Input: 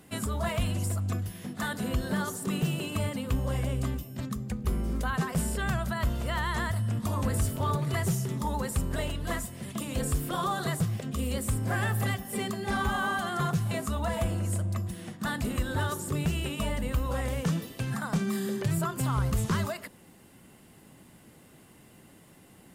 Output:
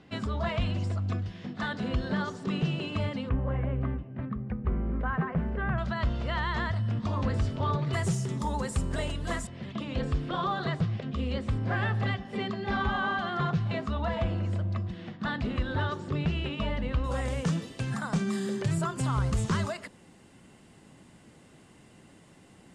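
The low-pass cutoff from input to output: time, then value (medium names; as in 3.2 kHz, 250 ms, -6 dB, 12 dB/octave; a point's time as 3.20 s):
low-pass 24 dB/octave
4.9 kHz
from 3.29 s 2.1 kHz
from 5.78 s 4.9 kHz
from 7.93 s 8.5 kHz
from 9.47 s 4.3 kHz
from 17.04 s 8.5 kHz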